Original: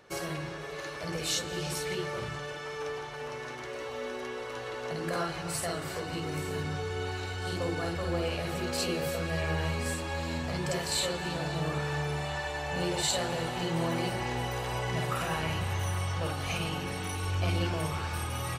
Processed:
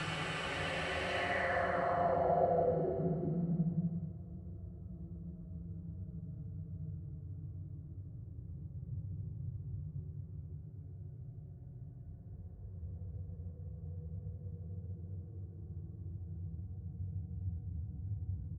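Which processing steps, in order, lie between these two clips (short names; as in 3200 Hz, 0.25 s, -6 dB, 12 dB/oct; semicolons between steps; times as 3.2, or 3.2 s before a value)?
echo 0.285 s -9.5 dB; Paulstretch 36×, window 0.10 s, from 5.6; low-pass sweep 2700 Hz -> 100 Hz, 1.12–4.21; gain -2.5 dB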